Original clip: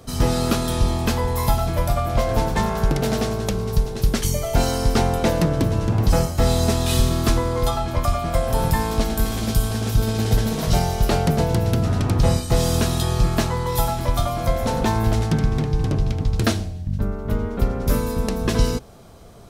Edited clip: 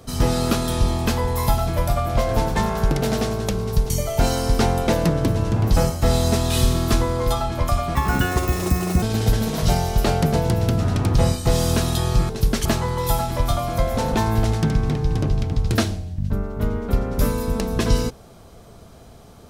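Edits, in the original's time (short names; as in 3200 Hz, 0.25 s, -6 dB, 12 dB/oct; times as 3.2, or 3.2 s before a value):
3.9–4.26 move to 13.34
8.31–10.07 speed 164%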